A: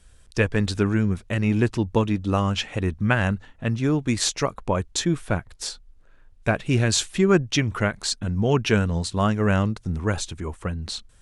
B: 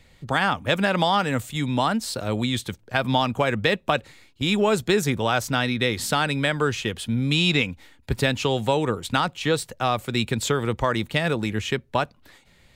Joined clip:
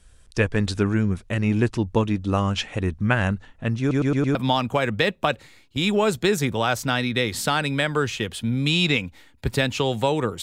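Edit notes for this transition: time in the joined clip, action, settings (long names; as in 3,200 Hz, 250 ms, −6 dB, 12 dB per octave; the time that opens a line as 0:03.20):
A
0:03.80: stutter in place 0.11 s, 5 plays
0:04.35: continue with B from 0:03.00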